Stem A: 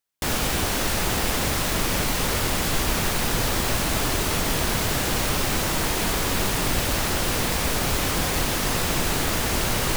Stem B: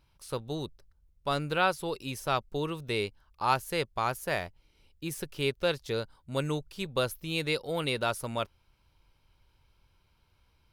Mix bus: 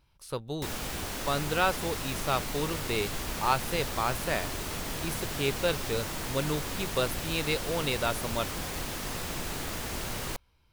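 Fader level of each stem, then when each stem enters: -11.5 dB, 0.0 dB; 0.40 s, 0.00 s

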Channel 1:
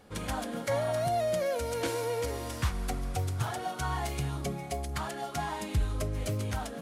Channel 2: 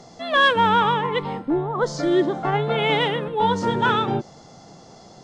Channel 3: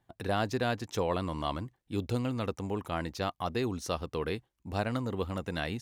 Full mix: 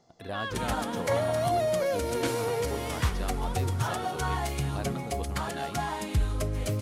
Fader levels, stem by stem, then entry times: +2.5 dB, -19.5 dB, -6.5 dB; 0.40 s, 0.00 s, 0.00 s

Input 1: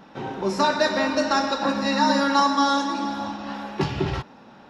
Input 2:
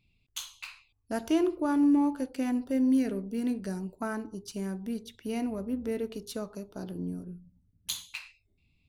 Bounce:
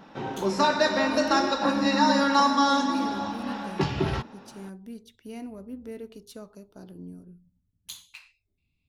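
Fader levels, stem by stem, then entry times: -1.5 dB, -6.5 dB; 0.00 s, 0.00 s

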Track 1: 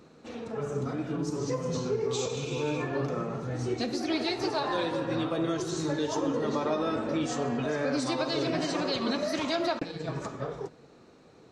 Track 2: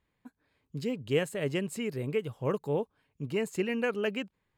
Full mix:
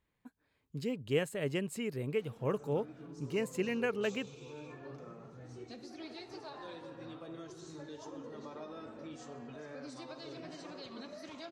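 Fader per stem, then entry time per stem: -17.5 dB, -3.5 dB; 1.90 s, 0.00 s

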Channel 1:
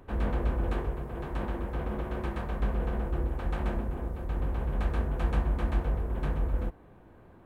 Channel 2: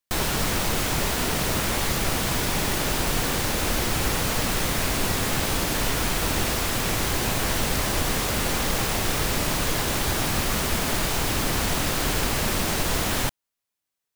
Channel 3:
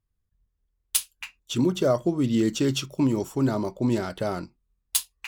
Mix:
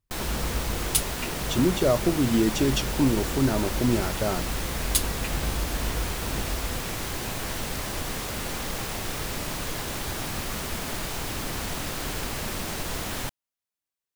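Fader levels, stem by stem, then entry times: -3.0 dB, -7.0 dB, 0.0 dB; 0.10 s, 0.00 s, 0.00 s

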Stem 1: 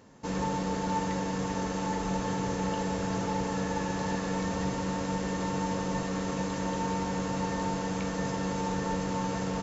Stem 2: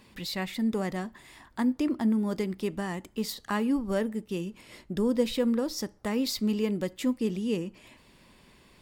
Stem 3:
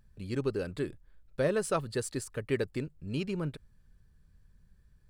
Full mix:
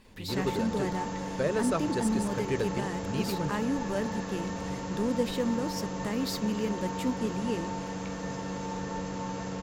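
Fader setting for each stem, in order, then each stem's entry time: -4.0 dB, -3.5 dB, -0.5 dB; 0.05 s, 0.00 s, 0.00 s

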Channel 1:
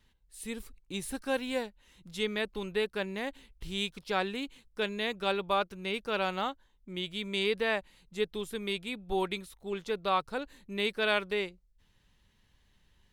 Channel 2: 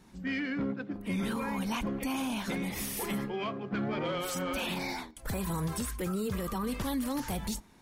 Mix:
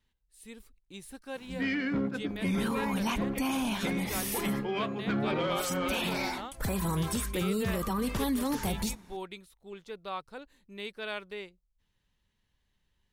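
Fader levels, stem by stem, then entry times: -9.0 dB, +2.5 dB; 0.00 s, 1.35 s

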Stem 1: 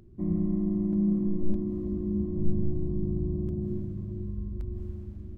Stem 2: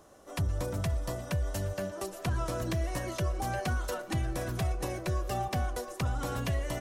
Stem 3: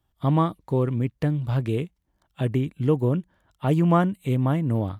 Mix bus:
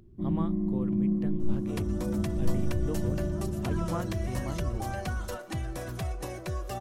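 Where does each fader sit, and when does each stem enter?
-1.5 dB, -2.5 dB, -15.0 dB; 0.00 s, 1.40 s, 0.00 s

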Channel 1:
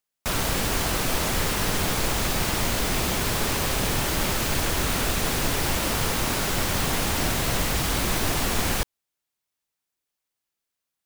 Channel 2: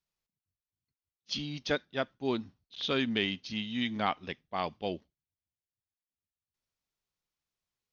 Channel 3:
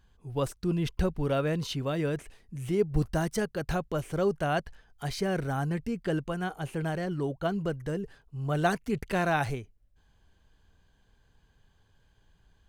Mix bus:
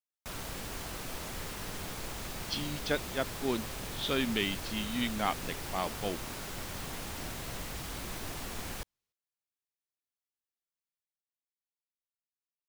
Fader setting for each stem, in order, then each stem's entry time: -15.5 dB, -1.0 dB, mute; 0.00 s, 1.20 s, mute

